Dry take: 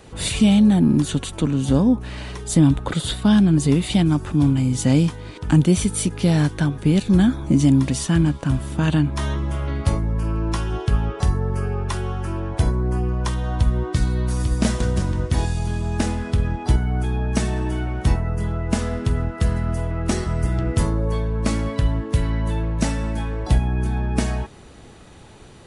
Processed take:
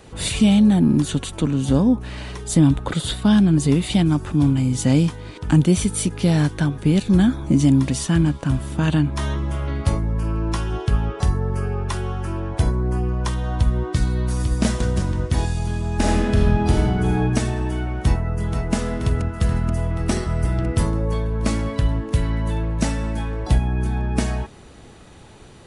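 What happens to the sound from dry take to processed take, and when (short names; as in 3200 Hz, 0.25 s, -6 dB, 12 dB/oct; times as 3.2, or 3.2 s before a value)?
15.95–17.19 reverb throw, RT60 1.5 s, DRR -3 dB
18.03–18.73 echo throw 0.48 s, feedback 75%, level -7 dB
19.96–20.87 notch 6800 Hz, Q 11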